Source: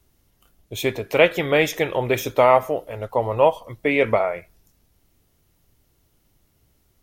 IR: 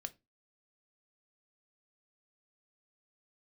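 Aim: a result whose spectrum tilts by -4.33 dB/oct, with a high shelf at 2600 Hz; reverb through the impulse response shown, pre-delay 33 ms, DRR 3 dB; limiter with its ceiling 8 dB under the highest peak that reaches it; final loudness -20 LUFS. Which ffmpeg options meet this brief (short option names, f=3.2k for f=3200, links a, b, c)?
-filter_complex "[0:a]highshelf=f=2.6k:g=-5,alimiter=limit=-11dB:level=0:latency=1,asplit=2[a][b];[1:a]atrim=start_sample=2205,adelay=33[c];[b][c]afir=irnorm=-1:irlink=0,volume=0dB[d];[a][d]amix=inputs=2:normalize=0,volume=2.5dB"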